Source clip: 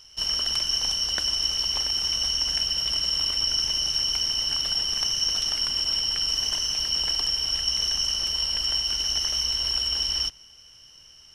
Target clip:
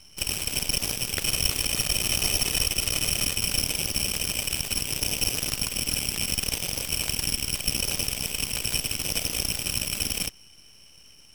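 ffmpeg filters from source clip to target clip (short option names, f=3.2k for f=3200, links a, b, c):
-filter_complex "[0:a]asettb=1/sr,asplit=3[a][b][c];[a]atrim=end=1.224[d];[b]atrim=start=1.22:end=3.38,asetpts=PTS-STARTPTS,afade=t=in:d=0.004:c=qsin,afade=t=out:st=2.156:d=0.004:c=qsin,aecho=1:1:1.6:0.81,atrim=end_sample=95256[e];[c]atrim=start=3.376[f];[d][e]acrossfade=d=0.004:c1=hsin:c2=qsin[g];[g][f]acrossfade=d=0.004:c1=qsin:c2=hsin,aeval=exprs='max(val(0),0)':c=same,aeval=exprs='0.237*(cos(1*acos(clip(val(0)/0.237,-1,1)))-cos(1*PI/2))+0.0668*(cos(7*acos(clip(val(0)/0.237,-1,1)))-cos(7*PI/2))':c=same,volume=2.5dB"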